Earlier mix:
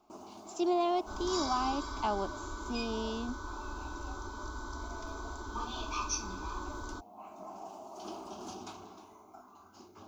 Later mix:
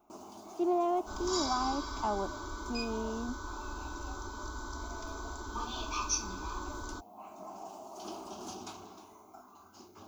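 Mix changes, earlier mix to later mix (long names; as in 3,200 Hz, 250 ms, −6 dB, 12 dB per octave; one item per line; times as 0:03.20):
speech: add low-pass filter 1,400 Hz 12 dB per octave
master: add high-shelf EQ 6,900 Hz +8 dB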